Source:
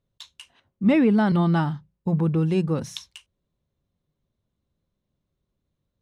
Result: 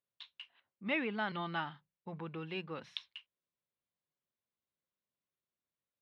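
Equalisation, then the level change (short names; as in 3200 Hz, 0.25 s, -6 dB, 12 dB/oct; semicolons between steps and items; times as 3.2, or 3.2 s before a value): dynamic EQ 3000 Hz, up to +5 dB, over -45 dBFS, Q 0.92; band-pass 4200 Hz, Q 0.71; air absorption 450 m; +1.0 dB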